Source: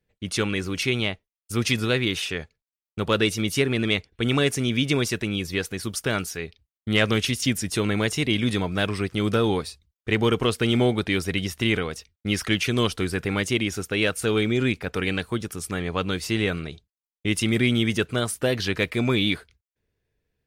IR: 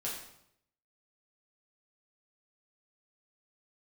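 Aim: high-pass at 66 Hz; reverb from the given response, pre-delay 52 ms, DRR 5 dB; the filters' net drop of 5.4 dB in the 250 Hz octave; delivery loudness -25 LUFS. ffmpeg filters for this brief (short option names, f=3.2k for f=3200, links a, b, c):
-filter_complex "[0:a]highpass=66,equalizer=f=250:t=o:g=-7,asplit=2[a][b];[1:a]atrim=start_sample=2205,adelay=52[c];[b][c]afir=irnorm=-1:irlink=0,volume=-7dB[d];[a][d]amix=inputs=2:normalize=0"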